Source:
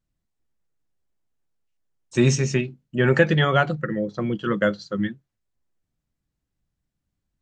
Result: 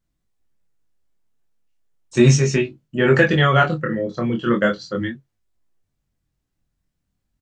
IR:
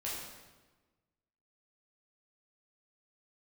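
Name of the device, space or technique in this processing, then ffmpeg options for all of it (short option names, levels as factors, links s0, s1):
double-tracked vocal: -filter_complex "[0:a]asplit=2[s0][s1];[s1]adelay=22,volume=0.335[s2];[s0][s2]amix=inputs=2:normalize=0,flanger=delay=19:depth=7.6:speed=0.36,volume=2.11"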